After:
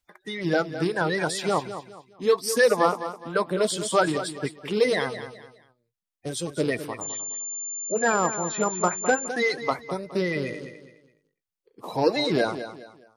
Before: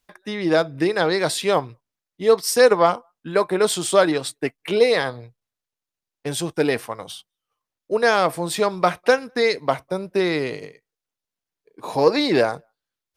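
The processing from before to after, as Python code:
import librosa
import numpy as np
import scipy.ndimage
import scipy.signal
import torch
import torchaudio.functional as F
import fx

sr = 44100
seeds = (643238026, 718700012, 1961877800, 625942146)

y = fx.spec_quant(x, sr, step_db=30)
y = fx.echo_feedback(y, sr, ms=208, feedback_pct=32, wet_db=-11.5)
y = fx.pwm(y, sr, carrier_hz=7200.0, at=(7.01, 9.28))
y = F.gain(torch.from_numpy(y), -4.5).numpy()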